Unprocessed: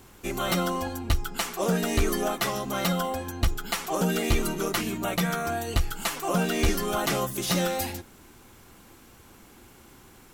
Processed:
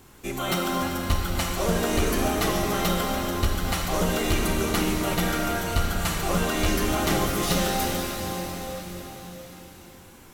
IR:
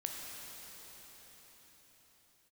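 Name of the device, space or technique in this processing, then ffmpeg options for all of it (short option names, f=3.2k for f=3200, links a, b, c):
cathedral: -filter_complex "[1:a]atrim=start_sample=2205[a];[0:a][a]afir=irnorm=-1:irlink=0,volume=1.5dB"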